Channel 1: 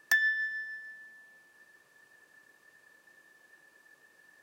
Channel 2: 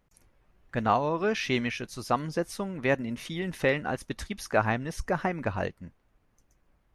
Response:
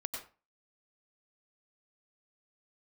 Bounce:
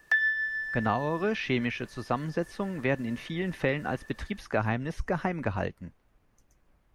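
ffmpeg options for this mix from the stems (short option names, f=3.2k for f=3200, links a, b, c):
-filter_complex "[0:a]dynaudnorm=f=410:g=3:m=7dB,volume=1.5dB[a];[1:a]acrossover=split=270|3000[b][c][d];[c]acompressor=threshold=-31dB:ratio=2[e];[b][e][d]amix=inputs=3:normalize=0,volume=1.5dB[f];[a][f]amix=inputs=2:normalize=0,acrossover=split=3500[g][h];[h]acompressor=threshold=-55dB:ratio=4:attack=1:release=60[i];[g][i]amix=inputs=2:normalize=0"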